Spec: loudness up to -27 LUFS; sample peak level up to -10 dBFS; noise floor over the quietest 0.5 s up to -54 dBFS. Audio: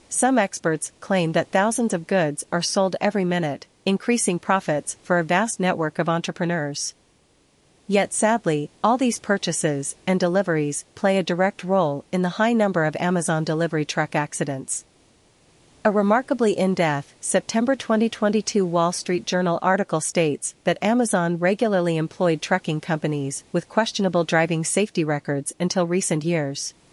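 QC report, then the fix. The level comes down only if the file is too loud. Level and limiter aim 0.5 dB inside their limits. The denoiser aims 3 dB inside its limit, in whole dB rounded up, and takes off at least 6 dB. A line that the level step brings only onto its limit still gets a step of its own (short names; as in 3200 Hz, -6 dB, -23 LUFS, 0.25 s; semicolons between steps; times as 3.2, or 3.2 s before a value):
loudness -22.5 LUFS: fail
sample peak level -6.0 dBFS: fail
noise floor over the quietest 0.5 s -60 dBFS: OK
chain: gain -5 dB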